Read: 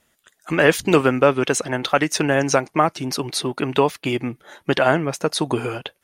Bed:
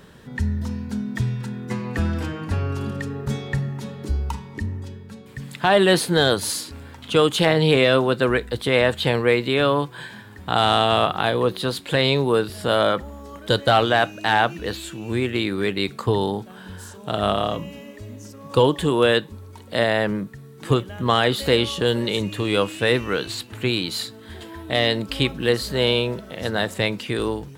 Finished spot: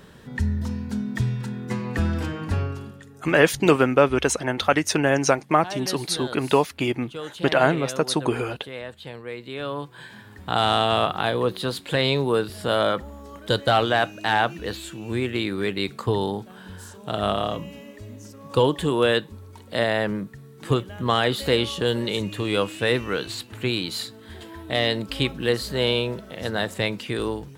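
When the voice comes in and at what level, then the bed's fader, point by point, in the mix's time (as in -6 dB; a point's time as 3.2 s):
2.75 s, -1.5 dB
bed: 2.61 s -0.5 dB
3.03 s -17.5 dB
9.25 s -17.5 dB
10.27 s -2.5 dB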